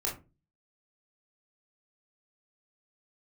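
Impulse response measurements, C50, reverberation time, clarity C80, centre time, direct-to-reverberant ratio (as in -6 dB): 9.0 dB, 0.30 s, 16.5 dB, 26 ms, -3.5 dB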